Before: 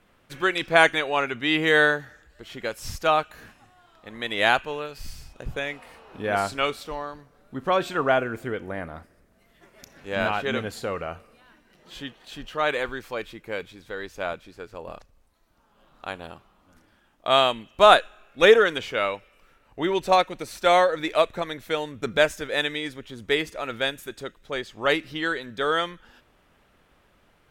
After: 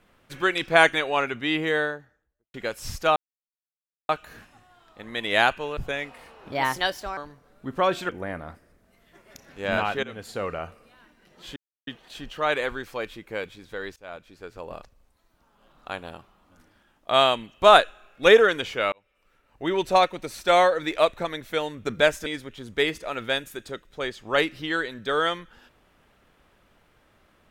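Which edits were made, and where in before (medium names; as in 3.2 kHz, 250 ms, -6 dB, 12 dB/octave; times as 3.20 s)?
1.18–2.54 s: studio fade out
3.16 s: insert silence 0.93 s
4.84–5.45 s: delete
6.20–7.06 s: speed 132%
7.98–8.57 s: delete
10.51–10.92 s: fade in, from -17.5 dB
12.04 s: insert silence 0.31 s
14.13–14.71 s: fade in, from -20.5 dB
19.09–19.96 s: fade in
22.43–22.78 s: delete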